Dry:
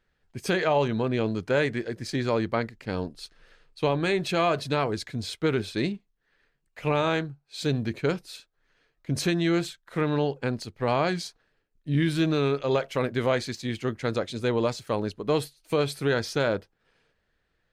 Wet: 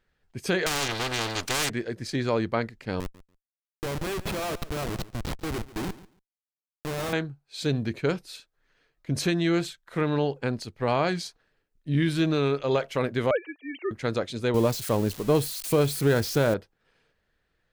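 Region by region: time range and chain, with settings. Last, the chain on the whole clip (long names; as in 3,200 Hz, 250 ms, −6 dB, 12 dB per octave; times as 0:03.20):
0:00.66–0:01.70: lower of the sound and its delayed copy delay 2.5 ms + low-shelf EQ 480 Hz +7.5 dB + every bin compressed towards the loudest bin 4 to 1
0:03.00–0:07.13: low-shelf EQ 460 Hz −3.5 dB + comparator with hysteresis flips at −29 dBFS + repeating echo 142 ms, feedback 16%, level −18 dB
0:13.31–0:13.91: three sine waves on the formant tracks + high-pass filter 350 Hz 24 dB per octave
0:14.54–0:16.54: spike at every zero crossing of −22 dBFS + spectral tilt −2 dB per octave
whole clip: no processing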